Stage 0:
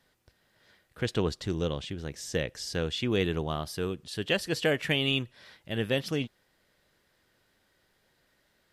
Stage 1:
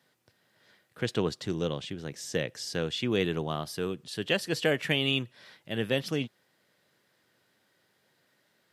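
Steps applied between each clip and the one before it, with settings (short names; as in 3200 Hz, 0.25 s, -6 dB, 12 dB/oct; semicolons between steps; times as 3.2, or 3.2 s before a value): HPF 110 Hz 24 dB/oct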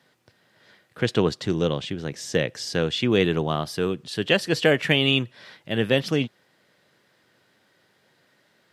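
high shelf 8700 Hz -9.5 dB; gain +7.5 dB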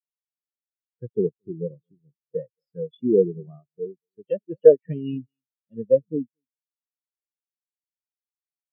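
echo 0.225 s -15 dB; treble ducked by the level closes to 980 Hz, closed at -12 dBFS; spectral expander 4:1; gain +2.5 dB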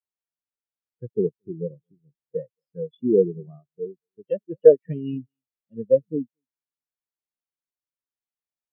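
mismatched tape noise reduction decoder only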